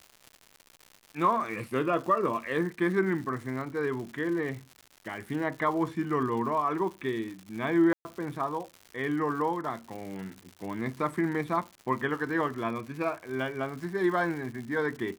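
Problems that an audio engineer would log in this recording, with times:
crackle 190 per s -38 dBFS
7.93–8.05 s: dropout 120 ms

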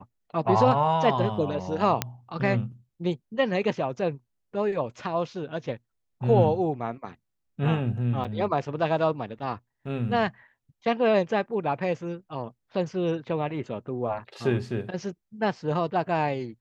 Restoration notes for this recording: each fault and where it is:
2.02 s: pop -7 dBFS
8.24–8.25 s: dropout 7.1 ms

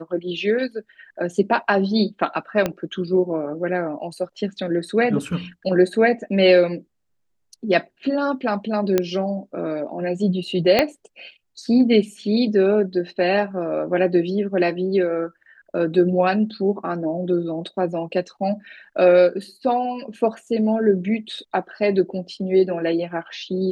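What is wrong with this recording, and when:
2.66 s: pop -8 dBFS
8.98 s: pop -5 dBFS
10.79 s: pop -3 dBFS

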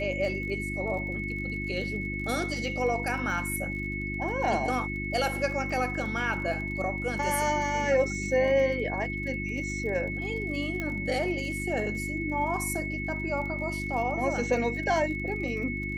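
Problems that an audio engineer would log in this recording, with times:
crackle 34 per s -38 dBFS
hum 50 Hz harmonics 7 -35 dBFS
whine 2.2 kHz -34 dBFS
10.80 s: pop -19 dBFS

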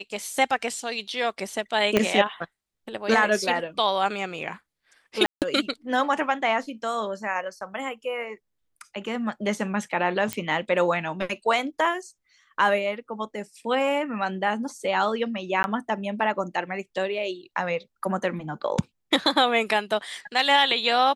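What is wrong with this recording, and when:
1.97 s: pop -6 dBFS
5.26–5.42 s: dropout 158 ms
10.33 s: pop -11 dBFS
15.63–15.64 s: dropout 11 ms

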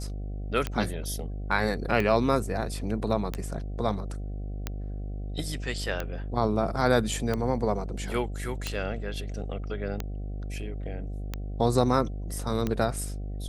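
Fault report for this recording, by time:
buzz 50 Hz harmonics 15 -34 dBFS
tick 45 rpm -15 dBFS

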